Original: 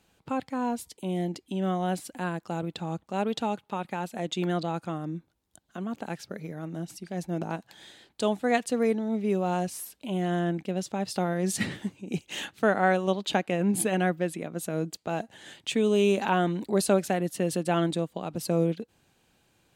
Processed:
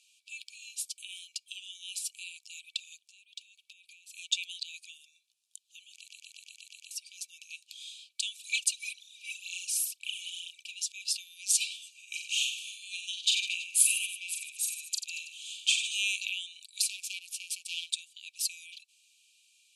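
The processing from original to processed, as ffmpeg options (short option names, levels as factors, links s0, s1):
-filter_complex "[0:a]asettb=1/sr,asplit=3[s0][s1][s2];[s0]atrim=end=3.074[s3];[s1]atrim=start=3.07:end=4.13,asetpts=PTS-STARTPTS,afade=t=in:d=0.004:c=qsin,afade=t=out:st=1.056:d=0.004:c=qsin,acompressor=threshold=0.00794:ratio=12:attack=3.2:release=140:knee=1:detection=peak[s4];[s2]atrim=start=4.126[s5];[s3][s4]acrossfade=d=0.004:c1=hsin:c2=qsin[s6];[s6][s5]acrossfade=d=0.004:c1=qsin:c2=hsin,asplit=3[s7][s8][s9];[s7]afade=t=out:st=8.38:d=0.02[s10];[s8]aphaser=in_gain=1:out_gain=1:delay=2.6:decay=0.66:speed=2:type=triangular,afade=t=in:st=8.38:d=0.02,afade=t=out:st=10.74:d=0.02[s11];[s9]afade=t=in:st=10.74:d=0.02[s12];[s10][s11][s12]amix=inputs=3:normalize=0,asettb=1/sr,asplit=3[s13][s14][s15];[s13]atrim=end=11.914[s16];[s14]atrim=start=11.91:end=15.98,asetpts=PTS-STARTPTS,afade=t=in:d=0.004:c=qsin,afade=t=out:st=4.066:d=0.004:c=qsin,aecho=1:1:40|90|152.5|230.6|328.3:0.631|0.398|0.251|0.158|0.1,atrim=end_sample=179487[s17];[s15]atrim=start=15.976[s18];[s16][s17]acrossfade=d=0.004:c1=hsin:c2=qsin[s19];[s19][s18]acrossfade=d=0.004:c1=qsin:c2=hsin,asettb=1/sr,asplit=3[s20][s21][s22];[s20]atrim=end=16.824[s23];[s21]atrim=start=16.82:end=17.9,asetpts=PTS-STARTPTS,afade=t=in:d=0.004:c=qsin,afade=t=out:st=1.076:d=0.004:c=qsin,aeval=exprs='max(val(0),0)':c=same[s24];[s22]atrim=start=17.896[s25];[s23][s24]acrossfade=d=0.004:c1=hsin:c2=qsin[s26];[s26][s25]acrossfade=d=0.004:c1=qsin:c2=hsin,asplit=9[s27][s28][s29][s30][s31][s32][s33][s34][s35];[s27]atrim=end=6.072[s36];[s28]atrim=start=5.948:end=6.072[s37];[s29]atrim=start=5.948:end=6.072[s38];[s30]atrim=start=5.948:end=6.072[s39];[s31]atrim=start=5.948:end=6.072[s40];[s32]atrim=start=5.948:end=6.072[s41];[s33]atrim=start=5.948:end=6.072[s42];[s34]atrim=start=5.948:end=6.072[s43];[s35]atrim=start=6.908[s44];[s36][s37]acrossfade=d=0.004:c1=hsin:c2=hsin[s45];[s45][s38]acrossfade=d=0.004:c1=hsin:c2=hsin[s46];[s46][s39]acrossfade=d=0.004:c1=hsin:c2=hsin[s47];[s47][s40]acrossfade=d=0.004:c1=hsin:c2=hsin[s48];[s48][s41]acrossfade=d=0.004:c1=hsin:c2=hsin[s49];[s49][s42]acrossfade=d=0.004:c1=hsin:c2=hsin[s50];[s50][s43]acrossfade=d=0.004:c1=hsin:c2=hsin[s51];[s51][s44]acrossfade=d=0.004:c1=hsin:c2=hsin,afftfilt=real='re*between(b*sr/4096,2300,12000)':imag='im*between(b*sr/4096,2300,12000)':win_size=4096:overlap=0.75,equalizer=f=7100:w=1.1:g=3,acontrast=89,volume=0.794"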